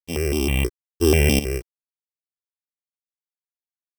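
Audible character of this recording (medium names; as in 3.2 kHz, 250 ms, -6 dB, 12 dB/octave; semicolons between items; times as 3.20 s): a buzz of ramps at a fixed pitch in blocks of 16 samples; tremolo saw up 0.72 Hz, depth 75%; a quantiser's noise floor 10-bit, dither none; notches that jump at a steady rate 6.2 Hz 380–1800 Hz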